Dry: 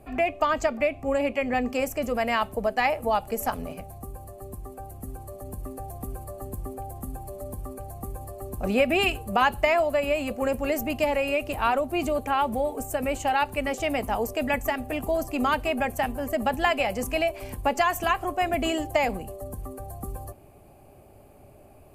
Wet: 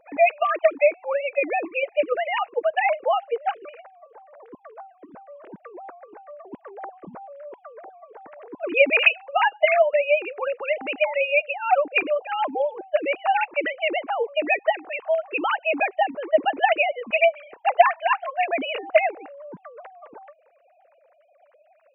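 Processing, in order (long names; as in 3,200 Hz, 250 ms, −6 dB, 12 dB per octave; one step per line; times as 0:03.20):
three sine waves on the formant tracks
dynamic equaliser 2,500 Hz, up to +7 dB, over −50 dBFS, Q 3.9
harmonic and percussive parts rebalanced percussive +7 dB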